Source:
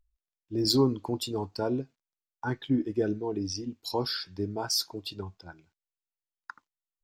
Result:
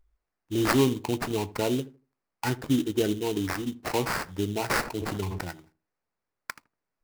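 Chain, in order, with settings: in parallel at +1.5 dB: compressor, threshold -37 dBFS, peak gain reduction 18 dB; on the sum: sample-rate reducer 3400 Hz, jitter 20%; darkening echo 79 ms, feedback 24%, low-pass 820 Hz, level -16 dB; 4.81–5.49 sustainer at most 22 dB/s

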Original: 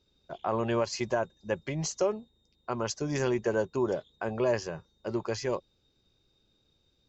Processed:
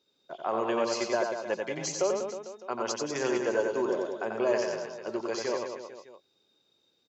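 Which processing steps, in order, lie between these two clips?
HPF 300 Hz 12 dB/oct; reverse bouncing-ball echo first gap 90 ms, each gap 1.15×, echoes 5

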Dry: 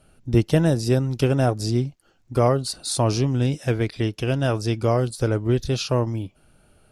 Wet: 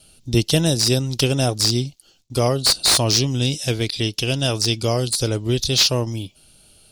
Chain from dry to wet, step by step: resonant high shelf 2500 Hz +14 dB, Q 1.5; gate with hold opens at -46 dBFS; slew limiter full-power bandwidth 1300 Hz

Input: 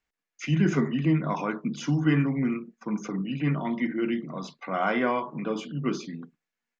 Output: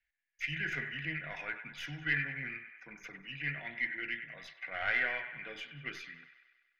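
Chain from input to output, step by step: tracing distortion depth 0.053 ms; EQ curve 100 Hz 0 dB, 200 Hz -26 dB, 710 Hz -10 dB, 1100 Hz -21 dB, 1700 Hz +9 dB, 7400 Hz -12 dB; on a send: band-limited delay 97 ms, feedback 63%, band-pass 1500 Hz, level -9.5 dB; on the sum: gain -3.5 dB

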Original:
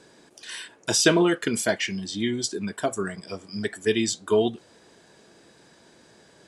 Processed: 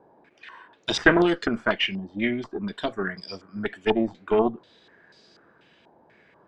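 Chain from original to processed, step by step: dynamic EQ 260 Hz, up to +6 dB, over -35 dBFS, Q 0.77; added harmonics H 2 -11 dB, 6 -25 dB, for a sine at -1.5 dBFS; stepped low-pass 4.1 Hz 840–4700 Hz; gain -5 dB

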